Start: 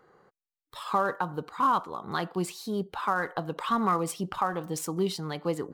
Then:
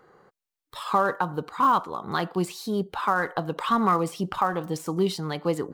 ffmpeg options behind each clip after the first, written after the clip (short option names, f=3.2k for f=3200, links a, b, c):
-af "deesser=0.8,volume=4dB"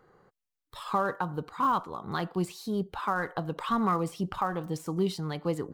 -af "lowshelf=f=130:g=11,volume=-6dB"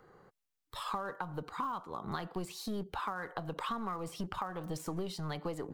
-filter_complex "[0:a]acrossover=split=410|5800[a][b][c];[a]aeval=exprs='clip(val(0),-1,0.0119)':c=same[d];[d][b][c]amix=inputs=3:normalize=0,acompressor=threshold=-35dB:ratio=10,volume=1dB"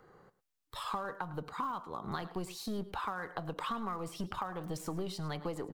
-af "aecho=1:1:106:0.15"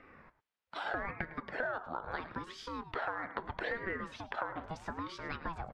-af "highpass=440,lowpass=2.7k,acompressor=threshold=-46dB:ratio=1.5,aeval=exprs='val(0)*sin(2*PI*490*n/s+490*0.55/0.77*sin(2*PI*0.77*n/s))':c=same,volume=8.5dB"